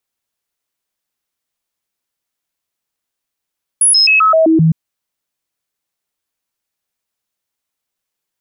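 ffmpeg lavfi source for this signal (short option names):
-f lavfi -i "aevalsrc='0.473*clip(min(mod(t,0.13),0.13-mod(t,0.13))/0.005,0,1)*sin(2*PI*10300*pow(2,-floor(t/0.13)/1)*mod(t,0.13))':d=0.91:s=44100"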